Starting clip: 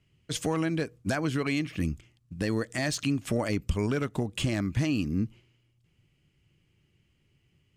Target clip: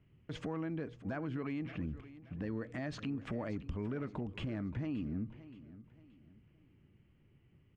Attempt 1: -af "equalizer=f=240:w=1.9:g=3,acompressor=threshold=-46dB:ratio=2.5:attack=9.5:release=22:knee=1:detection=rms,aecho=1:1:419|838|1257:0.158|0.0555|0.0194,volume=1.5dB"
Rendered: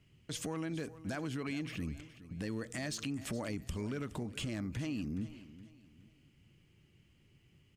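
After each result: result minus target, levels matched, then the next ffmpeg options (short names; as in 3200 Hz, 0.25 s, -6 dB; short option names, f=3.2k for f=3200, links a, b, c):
echo 0.156 s early; 2000 Hz band +2.5 dB
-af "equalizer=f=240:w=1.9:g=3,acompressor=threshold=-46dB:ratio=2.5:attack=9.5:release=22:knee=1:detection=rms,aecho=1:1:575|1150|1725:0.158|0.0555|0.0194,volume=1.5dB"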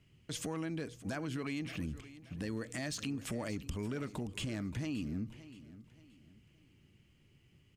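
2000 Hz band +3.0 dB
-af "lowpass=1.7k,equalizer=f=240:w=1.9:g=3,acompressor=threshold=-46dB:ratio=2.5:attack=9.5:release=22:knee=1:detection=rms,aecho=1:1:575|1150|1725:0.158|0.0555|0.0194,volume=1.5dB"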